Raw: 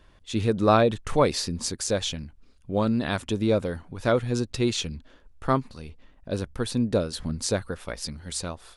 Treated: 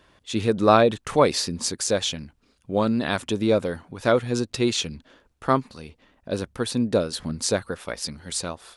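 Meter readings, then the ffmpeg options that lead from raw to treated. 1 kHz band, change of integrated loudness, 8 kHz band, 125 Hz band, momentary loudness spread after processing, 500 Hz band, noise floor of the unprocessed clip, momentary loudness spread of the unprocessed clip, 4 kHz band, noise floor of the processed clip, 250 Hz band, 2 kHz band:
+3.5 dB, +2.5 dB, +3.5 dB, -1.5 dB, 12 LU, +3.0 dB, -55 dBFS, 12 LU, +3.5 dB, -66 dBFS, +1.5 dB, +3.5 dB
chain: -af "highpass=f=180:p=1,volume=3.5dB"

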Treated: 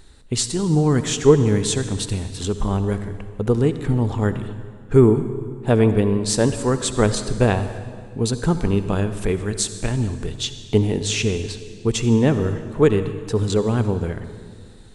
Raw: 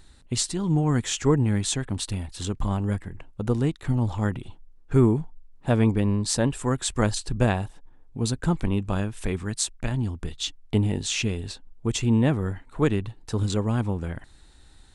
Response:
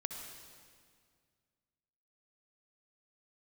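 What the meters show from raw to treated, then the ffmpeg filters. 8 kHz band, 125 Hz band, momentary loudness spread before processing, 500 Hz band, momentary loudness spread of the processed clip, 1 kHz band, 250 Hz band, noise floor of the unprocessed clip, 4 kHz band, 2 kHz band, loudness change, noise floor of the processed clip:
+4.0 dB, +4.0 dB, 10 LU, +9.5 dB, 11 LU, +4.0 dB, +4.5 dB, -52 dBFS, +4.0 dB, +4.0 dB, +5.0 dB, -41 dBFS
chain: -filter_complex "[0:a]equalizer=f=430:w=3.6:g=8,asplit=2[a][b];[1:a]atrim=start_sample=2205[c];[b][c]afir=irnorm=-1:irlink=0,volume=-1dB[d];[a][d]amix=inputs=2:normalize=0,volume=-1dB"

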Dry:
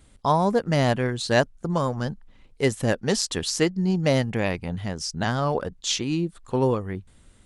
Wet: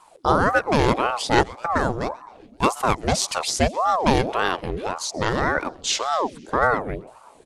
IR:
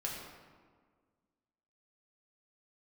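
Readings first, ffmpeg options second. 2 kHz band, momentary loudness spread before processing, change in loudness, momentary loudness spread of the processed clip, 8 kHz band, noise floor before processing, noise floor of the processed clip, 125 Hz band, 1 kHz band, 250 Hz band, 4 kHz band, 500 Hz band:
+5.5 dB, 8 LU, +2.5 dB, 8 LU, +2.5 dB, -56 dBFS, -50 dBFS, -3.5 dB, +7.5 dB, -1.0 dB, +2.0 dB, +1.0 dB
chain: -filter_complex "[0:a]asplit=6[a][b][c][d][e][f];[b]adelay=129,afreqshift=-120,volume=-22dB[g];[c]adelay=258,afreqshift=-240,volume=-26dB[h];[d]adelay=387,afreqshift=-360,volume=-30dB[i];[e]adelay=516,afreqshift=-480,volume=-34dB[j];[f]adelay=645,afreqshift=-600,volume=-38.1dB[k];[a][g][h][i][j][k]amix=inputs=6:normalize=0,aeval=exprs='val(0)*sin(2*PI*620*n/s+620*0.65/1.8*sin(2*PI*1.8*n/s))':c=same,volume=5dB"

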